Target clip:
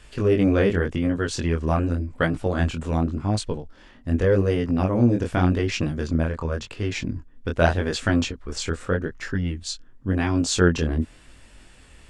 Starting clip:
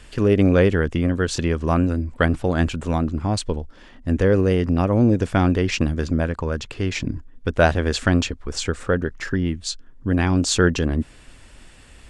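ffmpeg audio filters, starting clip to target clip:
-af "flanger=delay=18.5:depth=6.9:speed=0.87"

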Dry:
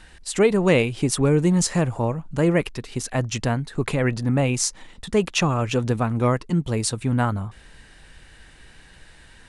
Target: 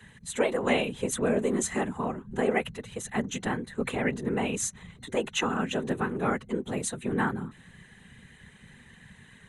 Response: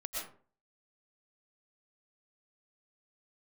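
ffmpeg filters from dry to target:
-af "afreqshift=120,afftfilt=real='hypot(re,im)*cos(2*PI*random(0))':imag='hypot(re,im)*sin(2*PI*random(1))':win_size=512:overlap=0.75,superequalizer=6b=0.447:8b=0.562:11b=1.58:14b=0.251"

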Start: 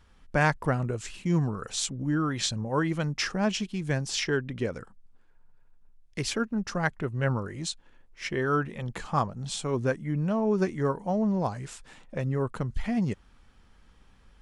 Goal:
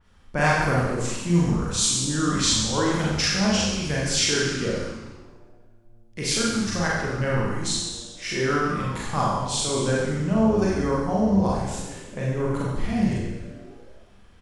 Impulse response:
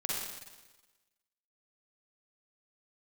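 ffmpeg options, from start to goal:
-filter_complex "[0:a]asplit=8[a][b][c][d][e][f][g][h];[b]adelay=132,afreqshift=-120,volume=-10dB[i];[c]adelay=264,afreqshift=-240,volume=-14.7dB[j];[d]adelay=396,afreqshift=-360,volume=-19.5dB[k];[e]adelay=528,afreqshift=-480,volume=-24.2dB[l];[f]adelay=660,afreqshift=-600,volume=-28.9dB[m];[g]adelay=792,afreqshift=-720,volume=-33.7dB[n];[h]adelay=924,afreqshift=-840,volume=-38.4dB[o];[a][i][j][k][l][m][n][o]amix=inputs=8:normalize=0[p];[1:a]atrim=start_sample=2205,asetrate=57330,aresample=44100[q];[p][q]afir=irnorm=-1:irlink=0,adynamicequalizer=threshold=0.00631:dfrequency=3400:dqfactor=0.7:tfrequency=3400:tqfactor=0.7:attack=5:release=100:ratio=0.375:range=3.5:mode=boostabove:tftype=highshelf,volume=2dB"

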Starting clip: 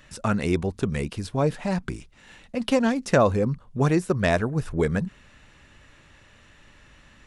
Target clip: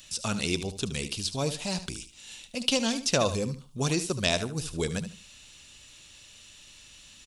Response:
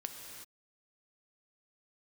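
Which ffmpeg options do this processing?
-filter_complex "[0:a]aexciter=amount=8.8:drive=4.4:freq=2.7k,acrossover=split=6300[a][b];[b]acompressor=threshold=-31dB:ratio=4:attack=1:release=60[c];[a][c]amix=inputs=2:normalize=0,aecho=1:1:74|148|222:0.251|0.0578|0.0133,volume=-7.5dB"

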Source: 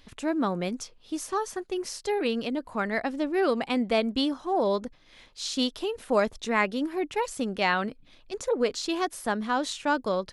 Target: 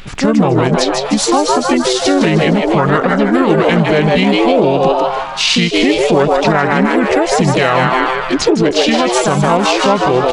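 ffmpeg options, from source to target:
-filter_complex "[0:a]asetrate=30296,aresample=44100,atempo=1.45565,asplit=7[a][b][c][d][e][f][g];[b]adelay=154,afreqshift=130,volume=-6dB[h];[c]adelay=308,afreqshift=260,volume=-12dB[i];[d]adelay=462,afreqshift=390,volume=-18dB[j];[e]adelay=616,afreqshift=520,volume=-24.1dB[k];[f]adelay=770,afreqshift=650,volume=-30.1dB[l];[g]adelay=924,afreqshift=780,volume=-36.1dB[m];[a][h][i][j][k][l][m]amix=inputs=7:normalize=0,aeval=exprs='0.299*(cos(1*acos(clip(val(0)/0.299,-1,1)))-cos(1*PI/2))+0.00531*(cos(7*acos(clip(val(0)/0.299,-1,1)))-cos(7*PI/2))':c=same,equalizer=f=250:w=4.7:g=-4,asplit=2[n][o];[o]asetrate=58866,aresample=44100,atempo=0.749154,volume=-4dB[p];[n][p]amix=inputs=2:normalize=0,acompressor=threshold=-29dB:ratio=3,alimiter=level_in=23dB:limit=-1dB:release=50:level=0:latency=1,volume=-1dB"

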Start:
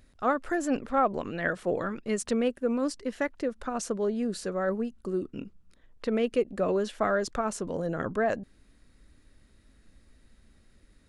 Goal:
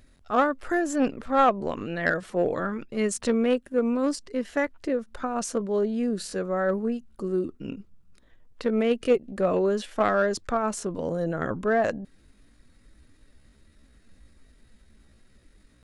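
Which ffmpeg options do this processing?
-filter_complex "[0:a]atempo=0.7,asplit=2[a][b];[b]acrusher=bits=2:mix=0:aa=0.5,volume=-10dB[c];[a][c]amix=inputs=2:normalize=0,volume=3dB"

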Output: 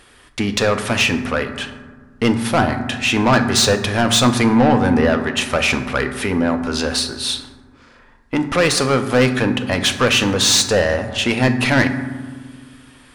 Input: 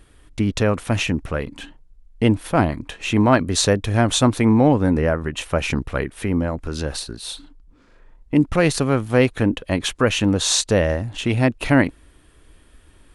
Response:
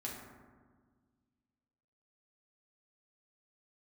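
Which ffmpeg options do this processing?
-filter_complex "[0:a]asplit=2[a][b];[b]highpass=f=720:p=1,volume=21dB,asoftclip=type=tanh:threshold=-1dB[c];[a][c]amix=inputs=2:normalize=0,lowpass=f=6.4k:p=1,volume=-6dB,asplit=2[d][e];[e]equalizer=f=315:t=o:w=0.33:g=-11,equalizer=f=630:t=o:w=0.33:g=-7,equalizer=f=5k:t=o:w=0.33:g=7[f];[1:a]atrim=start_sample=2205[g];[f][g]afir=irnorm=-1:irlink=0,volume=-1dB[h];[d][h]amix=inputs=2:normalize=0,volume=-7.5dB"

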